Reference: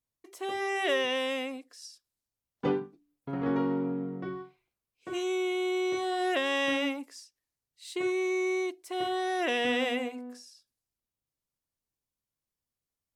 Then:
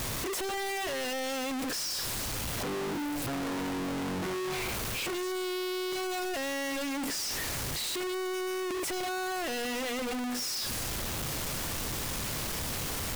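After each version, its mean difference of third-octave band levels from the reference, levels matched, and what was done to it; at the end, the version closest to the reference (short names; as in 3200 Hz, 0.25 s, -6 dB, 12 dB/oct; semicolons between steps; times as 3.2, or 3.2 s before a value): 14.0 dB: infinite clipping; high shelf 5100 Hz -7.5 dB; sample leveller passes 5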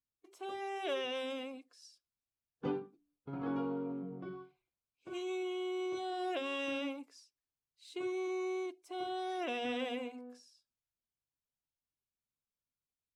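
2.0 dB: bin magnitudes rounded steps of 15 dB; high shelf 7800 Hz -9.5 dB; notch 1900 Hz, Q 5.8; gain -7.5 dB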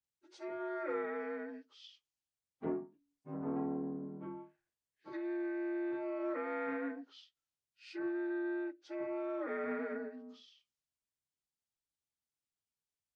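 9.5 dB: inharmonic rescaling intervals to 84%; treble ducked by the level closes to 1500 Hz, closed at -30.5 dBFS; Doppler distortion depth 0.11 ms; gain -7.5 dB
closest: second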